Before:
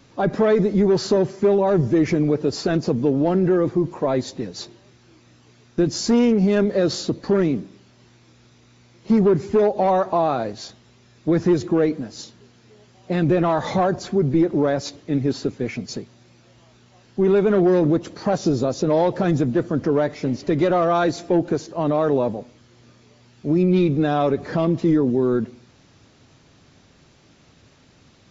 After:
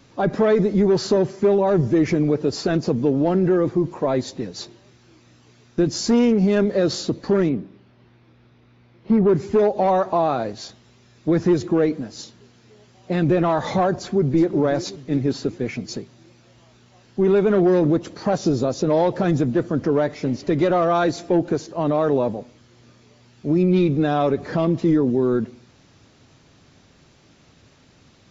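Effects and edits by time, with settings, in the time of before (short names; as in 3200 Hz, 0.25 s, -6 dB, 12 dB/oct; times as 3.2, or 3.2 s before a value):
7.49–9.29 air absorption 290 m
13.96–14.48 echo throw 0.37 s, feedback 50%, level -14 dB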